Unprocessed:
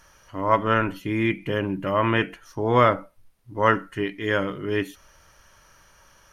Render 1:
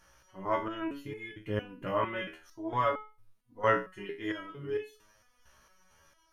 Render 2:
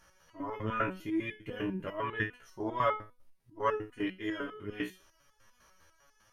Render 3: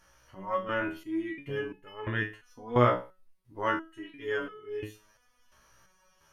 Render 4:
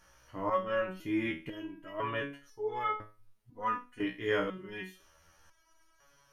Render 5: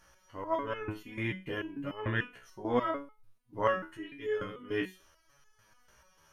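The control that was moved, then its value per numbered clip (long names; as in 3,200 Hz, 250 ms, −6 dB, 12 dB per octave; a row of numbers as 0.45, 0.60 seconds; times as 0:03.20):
step-sequenced resonator, speed: 4.4, 10, 2.9, 2, 6.8 Hertz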